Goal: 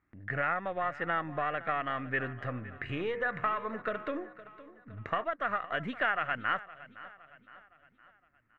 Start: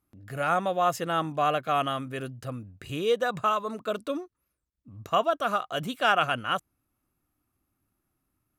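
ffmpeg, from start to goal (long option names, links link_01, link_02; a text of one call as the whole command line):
ffmpeg -i in.wav -filter_complex "[0:a]aeval=exprs='if(lt(val(0),0),0.708*val(0),val(0))':channel_layout=same,asplit=3[link_01][link_02][link_03];[link_01]afade=type=out:start_time=2.21:duration=0.02[link_04];[link_02]bandreject=frequency=78.53:width_type=h:width=4,bandreject=frequency=157.06:width_type=h:width=4,bandreject=frequency=235.59:width_type=h:width=4,bandreject=frequency=314.12:width_type=h:width=4,bandreject=frequency=392.65:width_type=h:width=4,bandreject=frequency=471.18:width_type=h:width=4,bandreject=frequency=549.71:width_type=h:width=4,bandreject=frequency=628.24:width_type=h:width=4,bandreject=frequency=706.77:width_type=h:width=4,bandreject=frequency=785.3:width_type=h:width=4,bandreject=frequency=863.83:width_type=h:width=4,bandreject=frequency=942.36:width_type=h:width=4,bandreject=frequency=1020.89:width_type=h:width=4,bandreject=frequency=1099.42:width_type=h:width=4,bandreject=frequency=1177.95:width_type=h:width=4,bandreject=frequency=1256.48:width_type=h:width=4,bandreject=frequency=1335.01:width_type=h:width=4,bandreject=frequency=1413.54:width_type=h:width=4,bandreject=frequency=1492.07:width_type=h:width=4,bandreject=frequency=1570.6:width_type=h:width=4,bandreject=frequency=1649.13:width_type=h:width=4,bandreject=frequency=1727.66:width_type=h:width=4,bandreject=frequency=1806.19:width_type=h:width=4,bandreject=frequency=1884.72:width_type=h:width=4,bandreject=frequency=1963.25:width_type=h:width=4,bandreject=frequency=2041.78:width_type=h:width=4,bandreject=frequency=2120.31:width_type=h:width=4,bandreject=frequency=2198.84:width_type=h:width=4,bandreject=frequency=2277.37:width_type=h:width=4,bandreject=frequency=2355.9:width_type=h:width=4,bandreject=frequency=2434.43:width_type=h:width=4,bandreject=frequency=2512.96:width_type=h:width=4,afade=type=in:start_time=2.21:duration=0.02,afade=type=out:start_time=5.23:duration=0.02[link_05];[link_03]afade=type=in:start_time=5.23:duration=0.02[link_06];[link_04][link_05][link_06]amix=inputs=3:normalize=0,acompressor=threshold=-33dB:ratio=6,lowpass=frequency=1900:width_type=q:width=5.9,aecho=1:1:513|1026|1539|2052:0.133|0.064|0.0307|0.0147,volume=1dB" out.wav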